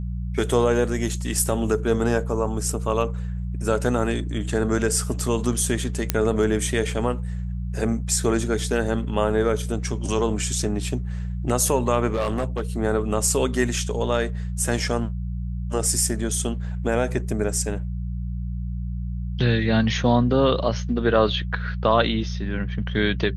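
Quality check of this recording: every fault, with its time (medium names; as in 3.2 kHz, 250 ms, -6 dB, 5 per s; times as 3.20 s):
hum 60 Hz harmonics 3 -28 dBFS
6.10 s: pop -3 dBFS
12.13–12.61 s: clipped -19 dBFS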